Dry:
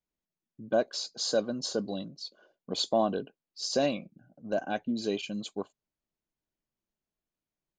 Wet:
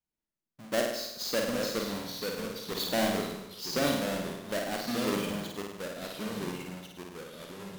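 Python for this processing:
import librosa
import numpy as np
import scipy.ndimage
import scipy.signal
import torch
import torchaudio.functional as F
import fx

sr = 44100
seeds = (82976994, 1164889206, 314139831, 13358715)

y = fx.halfwave_hold(x, sr)
y = fx.room_flutter(y, sr, wall_m=8.5, rt60_s=0.85)
y = fx.echo_pitch(y, sr, ms=726, semitones=-2, count=3, db_per_echo=-6.0)
y = y * librosa.db_to_amplitude(-7.5)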